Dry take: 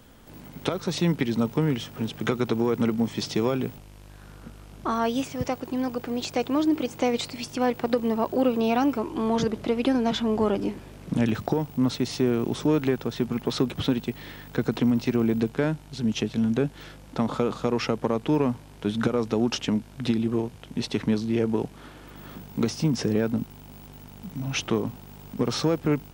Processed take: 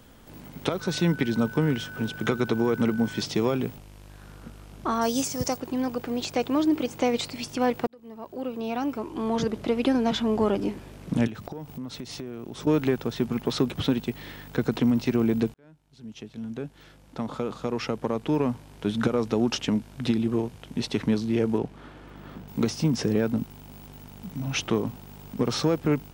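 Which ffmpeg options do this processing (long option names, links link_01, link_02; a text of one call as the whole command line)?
ffmpeg -i in.wav -filter_complex "[0:a]asettb=1/sr,asplit=3[link_01][link_02][link_03];[link_01]atrim=end=0.814[link_04];[link_02]atrim=start=0.81:end=3.22,asetpts=PTS-STARTPTS,afade=type=in:duration=0.004:curve=qsin,afade=type=out:start_time=2.406:duration=0.004:curve=qsin,aeval=exprs='val(0)+0.0112*sin(2*PI*1500*n/s)':channel_layout=same[link_05];[link_03]atrim=start=3.216[link_06];[link_04][link_05]acrossfade=duration=0.004:curve1=hsin:curve2=qsin[link_07];[link_07][link_06]acrossfade=duration=0.004:curve1=qsin:curve2=hsin,asettb=1/sr,asplit=3[link_08][link_09][link_10];[link_08]atrim=end=5.014[link_11];[link_09]atrim=start=5.01:end=5.57,asetpts=PTS-STARTPTS,afade=type=in:duration=0.004:curve=qsin,afade=type=out:start_time=0.556:duration=0.004:curve=qsin,highshelf=frequency=4100:width_type=q:width=1.5:gain=10[link_12];[link_10]atrim=start=5.566[link_13];[link_11][link_12]acrossfade=duration=0.004:curve1=hsin:curve2=qsin[link_14];[link_14][link_13]acrossfade=duration=0.004:curve1=qsin:curve2=hsin,asettb=1/sr,asplit=3[link_15][link_16][link_17];[link_15]atrim=end=11.274[link_18];[link_16]atrim=start=11.27:end=12.67,asetpts=PTS-STARTPTS,afade=type=in:duration=0.004:curve=qsin,afade=type=out:start_time=1.396:duration=0.004:curve=qsin,acompressor=threshold=-34dB:ratio=5:attack=3.2:release=140:knee=1:detection=peak[link_19];[link_17]atrim=start=12.666[link_20];[link_18][link_19]acrossfade=duration=0.004:curve1=hsin:curve2=qsin[link_21];[link_21][link_20]acrossfade=duration=0.004:curve1=qsin:curve2=hsin,asettb=1/sr,asplit=3[link_22][link_23][link_24];[link_22]atrim=end=21.584[link_25];[link_23]atrim=start=21.58:end=22.48,asetpts=PTS-STARTPTS,afade=type=in:duration=0.004:curve=qsin,afade=type=out:start_time=0.896:duration=0.004:curve=qsin,lowpass=frequency=2600:poles=1[link_26];[link_24]atrim=start=22.476[link_27];[link_25][link_26]acrossfade=duration=0.004:curve1=hsin:curve2=qsin[link_28];[link_28][link_27]acrossfade=duration=0.004:curve1=qsin:curve2=hsin,asplit=3[link_29][link_30][link_31];[link_29]atrim=end=7.87,asetpts=PTS-STARTPTS,afade=type=out:start_time=7.866:duration=0.004:curve=hsin[link_32];[link_30]atrim=start=7.87:end=15.54,asetpts=PTS-STARTPTS,afade=type=in:duration=1.87,afade=type=out:start_time=7.666:duration=0.004:curve=hsin[link_33];[link_31]atrim=start=15.54,asetpts=PTS-STARTPTS,afade=type=in:duration=3.43[link_34];[link_32][link_33][link_34]concat=n=3:v=0:a=1" out.wav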